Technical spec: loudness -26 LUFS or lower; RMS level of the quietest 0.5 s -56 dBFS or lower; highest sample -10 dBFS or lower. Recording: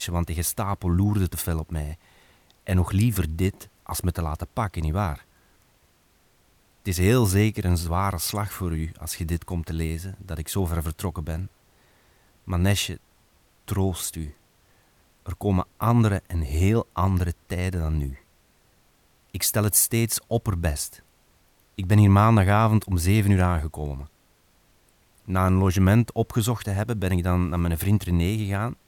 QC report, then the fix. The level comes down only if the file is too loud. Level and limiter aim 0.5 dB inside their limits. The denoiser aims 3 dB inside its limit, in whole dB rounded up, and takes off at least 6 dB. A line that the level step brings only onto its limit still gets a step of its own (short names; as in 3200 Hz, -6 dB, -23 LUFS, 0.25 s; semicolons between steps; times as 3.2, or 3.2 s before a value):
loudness -24.0 LUFS: fail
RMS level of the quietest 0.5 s -62 dBFS: OK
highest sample -6.0 dBFS: fail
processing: gain -2.5 dB; limiter -10.5 dBFS